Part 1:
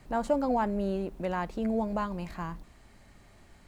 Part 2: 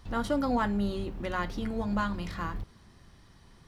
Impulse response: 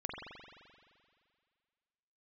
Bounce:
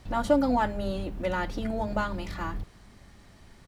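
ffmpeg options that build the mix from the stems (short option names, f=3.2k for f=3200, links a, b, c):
-filter_complex "[0:a]volume=0dB[a];[1:a]equalizer=f=1k:w=4:g=-4,adelay=0.4,volume=0.5dB[b];[a][b]amix=inputs=2:normalize=0"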